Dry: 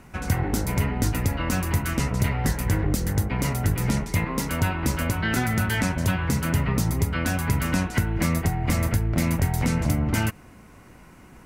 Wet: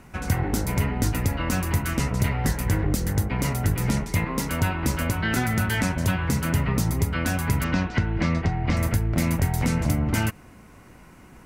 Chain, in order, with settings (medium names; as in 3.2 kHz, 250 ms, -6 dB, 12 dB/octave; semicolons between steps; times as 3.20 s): 7.64–8.77 s: low-pass 5.1 kHz 24 dB/octave